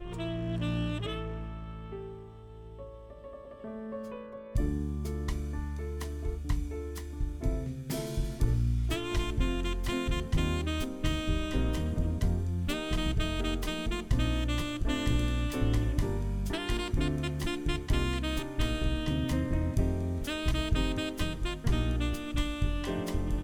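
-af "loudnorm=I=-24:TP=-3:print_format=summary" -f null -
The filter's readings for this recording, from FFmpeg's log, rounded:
Input Integrated:    -32.7 LUFS
Input True Peak:     -13.0 dBTP
Input LRA:             5.9 LU
Input Threshold:     -43.0 LUFS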